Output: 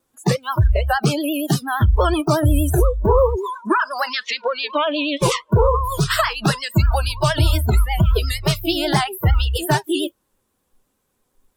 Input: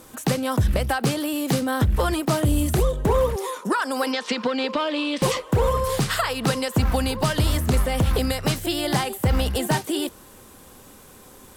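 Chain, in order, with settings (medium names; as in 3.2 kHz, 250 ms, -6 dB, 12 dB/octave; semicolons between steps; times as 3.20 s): spectral noise reduction 29 dB; vibrato 8.5 Hz 82 cents; trim +5.5 dB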